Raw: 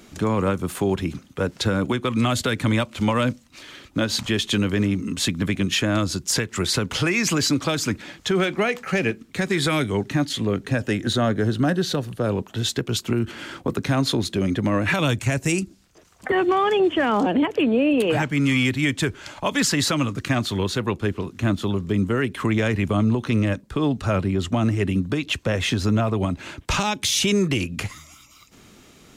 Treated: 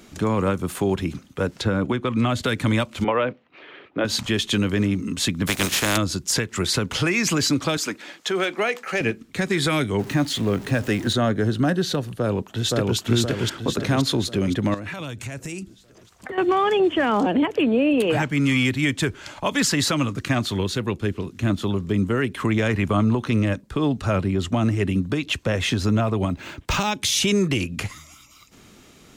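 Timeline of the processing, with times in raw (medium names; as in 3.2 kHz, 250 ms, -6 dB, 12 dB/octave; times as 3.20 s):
1.61–2.43 s: treble shelf 4.4 kHz -11.5 dB
3.04–4.05 s: cabinet simulation 220–2800 Hz, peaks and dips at 240 Hz -8 dB, 430 Hz +8 dB, 720 Hz +4 dB
5.46–5.96 s: spectral contrast reduction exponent 0.4
7.77–9.01 s: high-pass 340 Hz
9.99–11.13 s: jump at every zero crossing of -34 dBFS
12.16–12.97 s: echo throw 520 ms, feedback 50%, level -0.5 dB
14.74–16.38 s: compression 5:1, threshold -30 dBFS
20.61–21.50 s: peaking EQ 960 Hz -4.5 dB 1.6 oct
22.69–23.25 s: peaking EQ 1.2 kHz +4.5 dB 1.3 oct
26.28–26.92 s: decimation joined by straight lines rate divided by 2×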